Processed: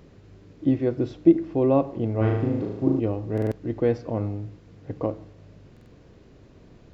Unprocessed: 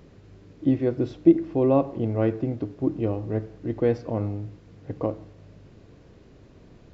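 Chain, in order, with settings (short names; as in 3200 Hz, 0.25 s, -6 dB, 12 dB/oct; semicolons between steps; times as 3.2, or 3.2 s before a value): 2.17–3 flutter echo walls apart 6.4 m, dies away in 0.92 s; stuck buffer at 3.33/5.72, samples 2048, times 3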